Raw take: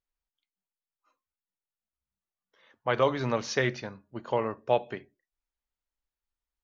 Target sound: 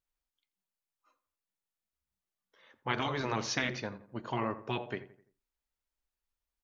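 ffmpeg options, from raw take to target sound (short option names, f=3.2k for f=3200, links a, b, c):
-filter_complex "[0:a]afftfilt=real='re*lt(hypot(re,im),0.2)':imag='im*lt(hypot(re,im),0.2)':win_size=1024:overlap=0.75,asplit=2[a][b];[b]adelay=85,lowpass=f=1.9k:p=1,volume=-14dB,asplit=2[c][d];[d]adelay=85,lowpass=f=1.9k:p=1,volume=0.42,asplit=2[e][f];[f]adelay=85,lowpass=f=1.9k:p=1,volume=0.42,asplit=2[g][h];[h]adelay=85,lowpass=f=1.9k:p=1,volume=0.42[i];[a][c][e][g][i]amix=inputs=5:normalize=0"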